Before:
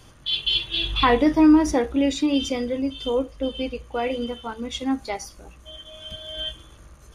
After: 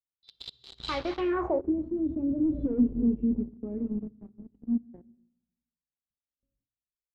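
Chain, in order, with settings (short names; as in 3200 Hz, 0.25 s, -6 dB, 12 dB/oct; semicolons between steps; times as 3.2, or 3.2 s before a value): regenerating reverse delay 0.15 s, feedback 52%, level -14 dB; Doppler pass-by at 2.7, 47 m/s, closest 3.6 m; gate with hold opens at -55 dBFS; high shelf 2300 Hz -7 dB; sample leveller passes 5; limiter -23.5 dBFS, peak gain reduction 9 dB; on a send at -24 dB: reverb RT60 1.0 s, pre-delay 46 ms; on the sum: low-pass sweep 4400 Hz -> 250 Hz, 1.14–1.73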